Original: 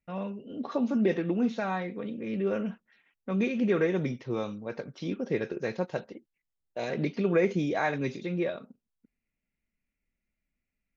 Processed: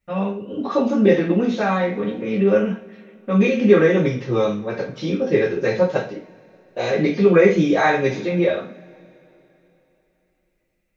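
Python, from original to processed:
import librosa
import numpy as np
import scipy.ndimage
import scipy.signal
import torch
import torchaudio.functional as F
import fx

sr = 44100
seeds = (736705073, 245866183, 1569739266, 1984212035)

y = fx.rev_double_slope(x, sr, seeds[0], early_s=0.36, late_s=3.4, knee_db=-28, drr_db=-7.0)
y = F.gain(torch.from_numpy(y), 4.0).numpy()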